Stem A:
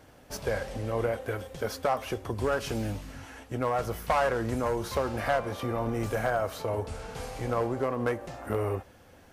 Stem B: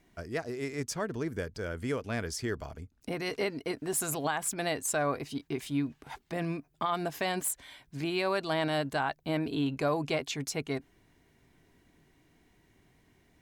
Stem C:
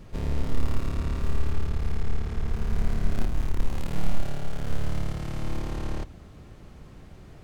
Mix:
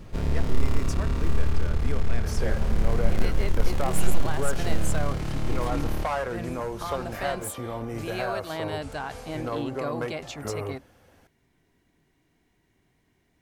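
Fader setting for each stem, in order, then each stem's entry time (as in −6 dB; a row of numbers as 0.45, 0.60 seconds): −3.0, −3.5, +2.5 decibels; 1.95, 0.00, 0.00 seconds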